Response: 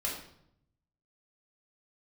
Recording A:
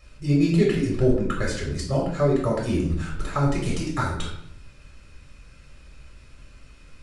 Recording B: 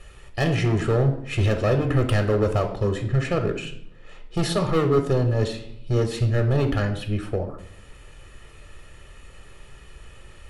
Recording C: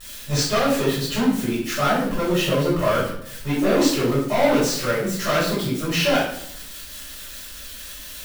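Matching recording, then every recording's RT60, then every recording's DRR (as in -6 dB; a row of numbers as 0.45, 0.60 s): A; 0.75, 0.75, 0.75 s; -4.0, 5.5, -11.5 dB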